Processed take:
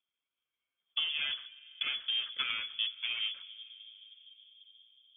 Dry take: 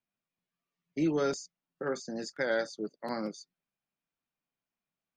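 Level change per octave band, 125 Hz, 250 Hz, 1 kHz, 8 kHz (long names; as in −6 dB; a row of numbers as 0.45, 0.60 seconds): below −25 dB, below −30 dB, −9.5 dB, below −35 dB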